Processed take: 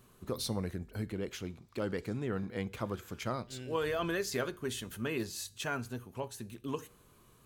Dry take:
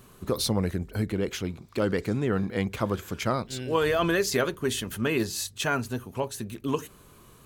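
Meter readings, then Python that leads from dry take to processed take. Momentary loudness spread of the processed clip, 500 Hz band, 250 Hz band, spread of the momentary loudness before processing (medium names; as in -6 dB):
9 LU, -9.0 dB, -9.5 dB, 9 LU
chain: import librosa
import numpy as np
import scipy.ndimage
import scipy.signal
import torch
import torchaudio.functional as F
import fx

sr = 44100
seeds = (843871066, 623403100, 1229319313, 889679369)

y = fx.comb_fb(x, sr, f0_hz=120.0, decay_s=0.46, harmonics='all', damping=0.0, mix_pct=40)
y = y * librosa.db_to_amplitude(-5.5)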